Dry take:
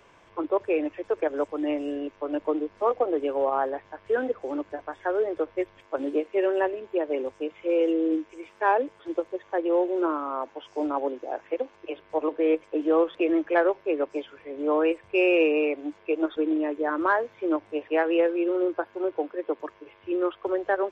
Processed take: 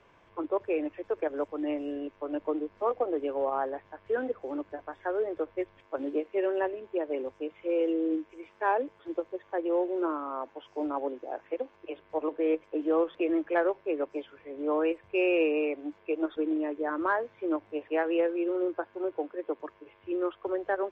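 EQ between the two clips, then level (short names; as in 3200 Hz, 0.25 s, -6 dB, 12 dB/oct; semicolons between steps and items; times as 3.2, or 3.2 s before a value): air absorption 66 m; tone controls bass +2 dB, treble -3 dB; -4.5 dB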